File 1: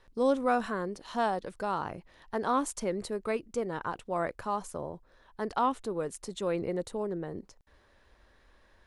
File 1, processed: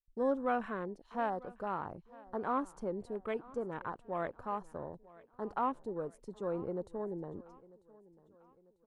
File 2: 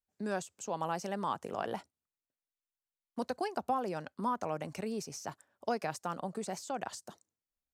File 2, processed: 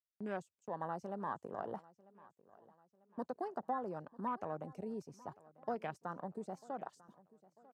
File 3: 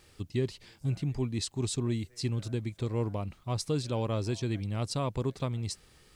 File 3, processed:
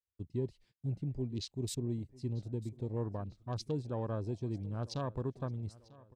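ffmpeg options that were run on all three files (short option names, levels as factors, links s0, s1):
-filter_complex "[0:a]afwtdn=0.00891,agate=range=0.0562:threshold=0.00126:ratio=16:detection=peak,asplit=2[s0][s1];[s1]aecho=0:1:945|1890|2835:0.0841|0.0379|0.017[s2];[s0][s2]amix=inputs=2:normalize=0,volume=0.531"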